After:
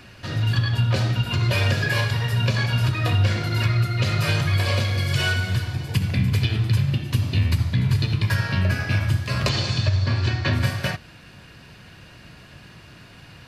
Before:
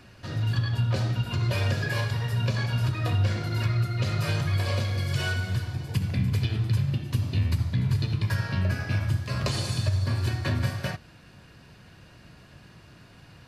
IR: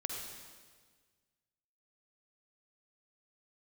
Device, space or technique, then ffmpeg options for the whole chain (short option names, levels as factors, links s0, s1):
presence and air boost: -filter_complex "[0:a]asettb=1/sr,asplit=3[s0][s1][s2];[s0]atrim=end=9.494[s3];[s1]atrim=start=9.49:end=10.53,asetpts=PTS-STARTPTS,afade=t=in:d=0.004:c=qsin,afade=t=out:st=1.036:d=0.004:c=qsin,lowpass=f=6000:w=0.5412,lowpass=f=6000:w=1.3066[s4];[s2]atrim=start=10.526[s5];[s3][s4]acrossfade=d=0.004:c1=hsin:c2=qsin[s6];[s6][s5]acrossfade=d=0.004:c1=qsin:c2=hsin,equalizer=f=2600:t=o:w=1.6:g=4.5,highshelf=f=11000:g=3.5,volume=1.68"